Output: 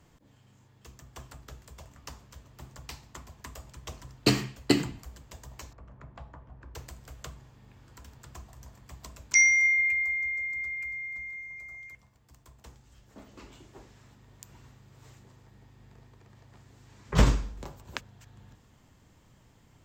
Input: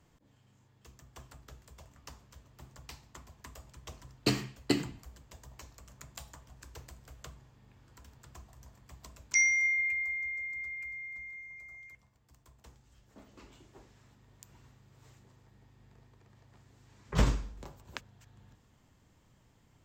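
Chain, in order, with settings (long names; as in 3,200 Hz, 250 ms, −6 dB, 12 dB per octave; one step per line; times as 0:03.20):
0:05.73–0:06.75: low-pass filter 1,300 Hz 12 dB per octave
level +5.5 dB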